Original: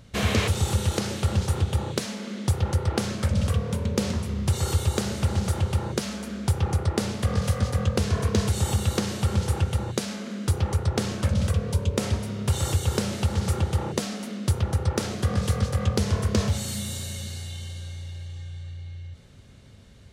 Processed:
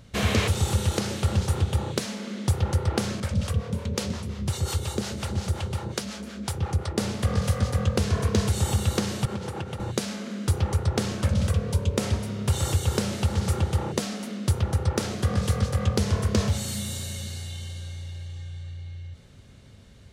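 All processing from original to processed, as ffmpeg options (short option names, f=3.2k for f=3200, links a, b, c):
-filter_complex "[0:a]asettb=1/sr,asplit=3[a][b][c];[a]atrim=end=3.204[d];[b]atrim=start=3.2:end=6.98,asetpts=PTS-STARTPTS,afade=t=in:d=0.004:c=qsin,afade=t=out:st=3.776:d=0.004:c=qsin,equalizer=f=4.3k:t=o:w=2.1:g=2.5,acrossover=split=510[e][f];[e]aeval=exprs='val(0)*(1-0.7/2+0.7/2*cos(2*PI*5.6*n/s))':c=same[g];[f]aeval=exprs='val(0)*(1-0.7/2-0.7/2*cos(2*PI*5.6*n/s))':c=same[h];[g][h]amix=inputs=2:normalize=0[i];[c]atrim=start=6.976[j];[d][i]acrossfade=d=0.004:c1=hsin:c2=qsin[k];[k][j]acrossfade=d=0.004:c1=qsin:c2=hsin,asettb=1/sr,asplit=3[l][m][n];[l]atrim=end=9.254[o];[m]atrim=start=9.25:end=9.8,asetpts=PTS-STARTPTS,afade=t=in:d=0.004:c=qsin,afade=t=out:st=0.546:d=0.004:c=qsin,highshelf=f=4.4k:g=-10.5,acompressor=threshold=-24dB:ratio=2.5:attack=3.2:release=140:knee=1:detection=peak,highpass=150[p];[n]atrim=start=9.796[q];[o][p]acrossfade=d=0.004:c1=hsin:c2=qsin[r];[r][q]acrossfade=d=0.004:c1=qsin:c2=hsin"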